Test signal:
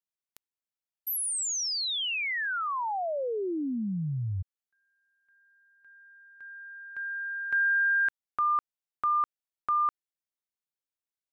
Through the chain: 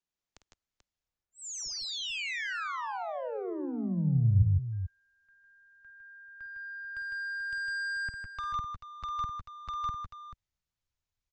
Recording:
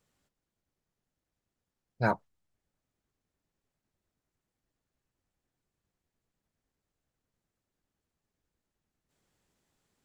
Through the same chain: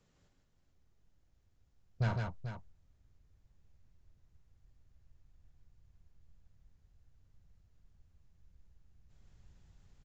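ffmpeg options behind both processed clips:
ffmpeg -i in.wav -filter_complex "[0:a]acrossover=split=250|2000[link_01][link_02][link_03];[link_01]acompressor=threshold=-46dB:ratio=2[link_04];[link_02]acompressor=threshold=-42dB:ratio=2.5[link_05];[link_03]acompressor=threshold=-44dB:ratio=2.5[link_06];[link_04][link_05][link_06]amix=inputs=3:normalize=0,aresample=16000,asoftclip=type=tanh:threshold=-35.5dB,aresample=44100,lowshelf=frequency=340:gain=7,aecho=1:1:51|155|166|437:0.299|0.631|0.237|0.316,asubboost=boost=7.5:cutoff=100,volume=1.5dB" out.wav

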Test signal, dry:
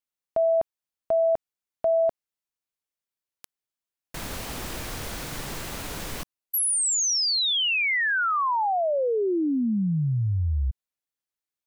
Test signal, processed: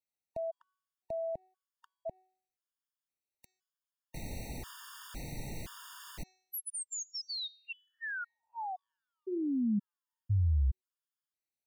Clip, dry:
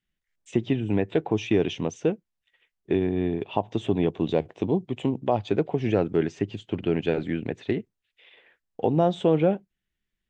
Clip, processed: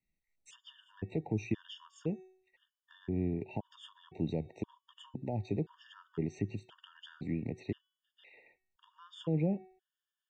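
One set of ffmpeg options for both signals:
ffmpeg -i in.wav -filter_complex "[0:a]bandreject=frequency=374:width_type=h:width=4,bandreject=frequency=748:width_type=h:width=4,bandreject=frequency=1122:width_type=h:width=4,bandreject=frequency=1496:width_type=h:width=4,bandreject=frequency=1870:width_type=h:width=4,bandreject=frequency=2244:width_type=h:width=4,bandreject=frequency=2618:width_type=h:width=4,bandreject=frequency=2992:width_type=h:width=4,bandreject=frequency=3366:width_type=h:width=4,bandreject=frequency=3740:width_type=h:width=4,bandreject=frequency=4114:width_type=h:width=4,bandreject=frequency=4488:width_type=h:width=4,bandreject=frequency=4862:width_type=h:width=4,bandreject=frequency=5236:width_type=h:width=4,bandreject=frequency=5610:width_type=h:width=4,bandreject=frequency=5984:width_type=h:width=4,bandreject=frequency=6358:width_type=h:width=4,bandreject=frequency=6732:width_type=h:width=4,bandreject=frequency=7106:width_type=h:width=4,bandreject=frequency=7480:width_type=h:width=4,acrossover=split=240[link_01][link_02];[link_02]acompressor=threshold=-42dB:ratio=2:attack=0.37:release=121:knee=2.83:detection=peak[link_03];[link_01][link_03]amix=inputs=2:normalize=0,afftfilt=real='re*gt(sin(2*PI*0.97*pts/sr)*(1-2*mod(floor(b*sr/1024/920),2)),0)':imag='im*gt(sin(2*PI*0.97*pts/sr)*(1-2*mod(floor(b*sr/1024/920),2)),0)':win_size=1024:overlap=0.75,volume=-3dB" out.wav

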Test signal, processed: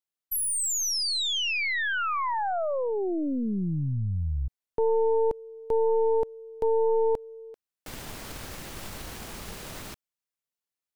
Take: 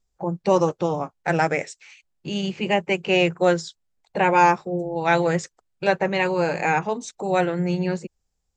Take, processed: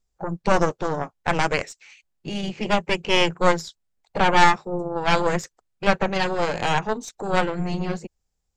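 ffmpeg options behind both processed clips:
ffmpeg -i in.wav -af "aeval=exprs='0.668*(cos(1*acos(clip(val(0)/0.668,-1,1)))-cos(1*PI/2))+0.299*(cos(4*acos(clip(val(0)/0.668,-1,1)))-cos(4*PI/2))':channel_layout=same,volume=-1dB" out.wav

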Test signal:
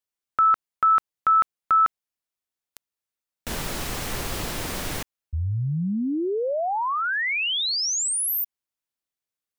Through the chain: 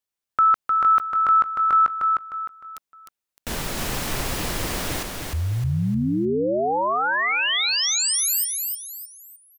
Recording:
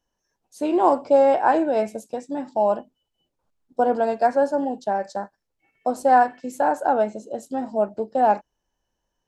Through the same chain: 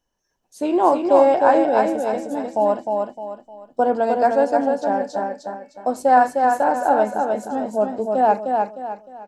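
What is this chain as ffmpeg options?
ffmpeg -i in.wav -af "aecho=1:1:306|612|918|1224:0.631|0.221|0.0773|0.0271,volume=1.5dB" out.wav

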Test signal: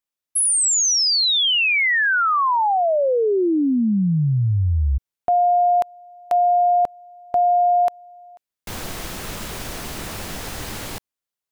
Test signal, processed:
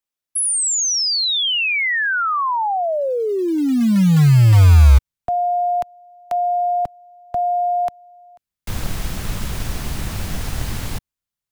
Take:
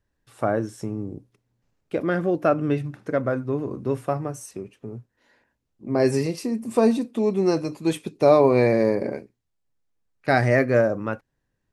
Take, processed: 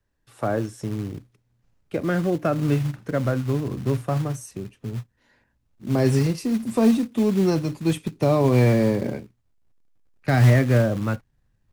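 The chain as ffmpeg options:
ffmpeg -i in.wav -filter_complex "[0:a]asubboost=boost=3.5:cutoff=200,acrossover=split=310[link_01][link_02];[link_02]acompressor=threshold=-15dB:ratio=6:attack=0.18:release=463:knee=2.83:detection=peak[link_03];[link_01][link_03]amix=inputs=2:normalize=0,acrossover=split=290|2900[link_04][link_05][link_06];[link_04]acrusher=bits=4:mode=log:mix=0:aa=0.000001[link_07];[link_07][link_05][link_06]amix=inputs=3:normalize=0" out.wav

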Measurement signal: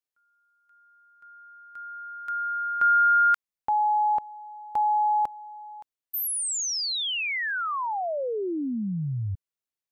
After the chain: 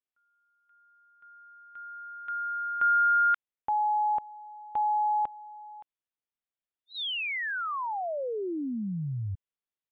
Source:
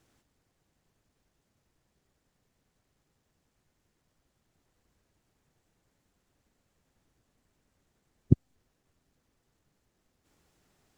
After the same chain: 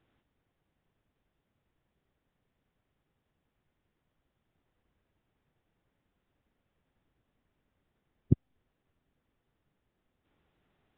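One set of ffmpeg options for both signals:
ffmpeg -i in.wav -af "aresample=8000,aresample=44100,volume=-3.5dB" out.wav

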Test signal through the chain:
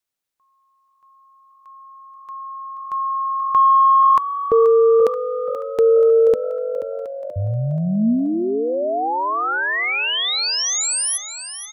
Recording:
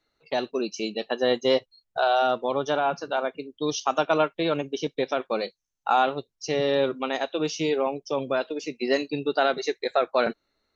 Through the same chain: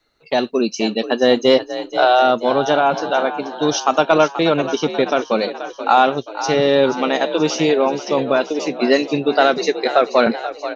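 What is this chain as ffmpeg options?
ffmpeg -i in.wav -filter_complex "[0:a]adynamicequalizer=threshold=0.00501:dfrequency=230:dqfactor=4.3:tfrequency=230:tqfactor=4.3:attack=5:release=100:ratio=0.375:range=3:mode=boostabove:tftype=bell,acontrast=28,asplit=2[link_01][link_02];[link_02]asplit=6[link_03][link_04][link_05][link_06][link_07][link_08];[link_03]adelay=481,afreqshift=47,volume=-12dB[link_09];[link_04]adelay=962,afreqshift=94,volume=-17dB[link_10];[link_05]adelay=1443,afreqshift=141,volume=-22.1dB[link_11];[link_06]adelay=1924,afreqshift=188,volume=-27.1dB[link_12];[link_07]adelay=2405,afreqshift=235,volume=-32.1dB[link_13];[link_08]adelay=2886,afreqshift=282,volume=-37.2dB[link_14];[link_09][link_10][link_11][link_12][link_13][link_14]amix=inputs=6:normalize=0[link_15];[link_01][link_15]amix=inputs=2:normalize=0,volume=3.5dB" out.wav

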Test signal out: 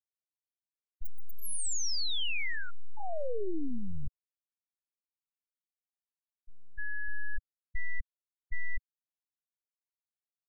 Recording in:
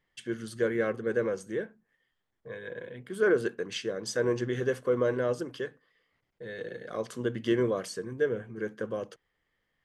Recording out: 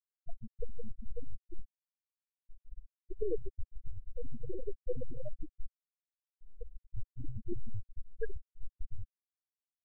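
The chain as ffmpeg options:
ffmpeg -i in.wav -af "aeval=exprs='0.2*(cos(1*acos(clip(val(0)/0.2,-1,1)))-cos(1*PI/2))+0.0141*(cos(7*acos(clip(val(0)/0.2,-1,1)))-cos(7*PI/2))+0.0562*(cos(8*acos(clip(val(0)/0.2,-1,1)))-cos(8*PI/2))':channel_layout=same,volume=29dB,asoftclip=hard,volume=-29dB,equalizer=frequency=1100:width=1.4:gain=-9,afftfilt=real='re*gte(hypot(re,im),0.0794)':imag='im*gte(hypot(re,im),0.0794)':win_size=1024:overlap=0.75,equalizer=frequency=160:width=1.3:gain=-10.5,volume=6dB" out.wav

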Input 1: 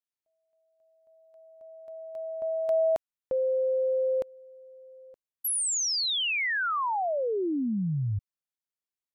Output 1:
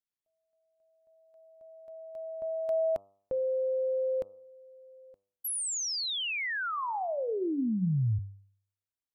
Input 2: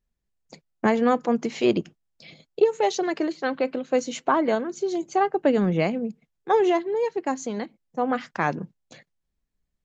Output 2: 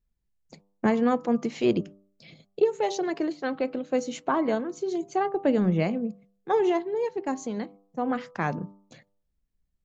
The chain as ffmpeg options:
ffmpeg -i in.wav -af "lowshelf=frequency=260:gain=8,bandreject=frequency=98.92:width_type=h:width=4,bandreject=frequency=197.84:width_type=h:width=4,bandreject=frequency=296.76:width_type=h:width=4,bandreject=frequency=395.68:width_type=h:width=4,bandreject=frequency=494.6:width_type=h:width=4,bandreject=frequency=593.52:width_type=h:width=4,bandreject=frequency=692.44:width_type=h:width=4,bandreject=frequency=791.36:width_type=h:width=4,bandreject=frequency=890.28:width_type=h:width=4,bandreject=frequency=989.2:width_type=h:width=4,bandreject=frequency=1088.12:width_type=h:width=4,bandreject=frequency=1187.04:width_type=h:width=4,bandreject=frequency=1285.96:width_type=h:width=4,volume=-5dB" out.wav

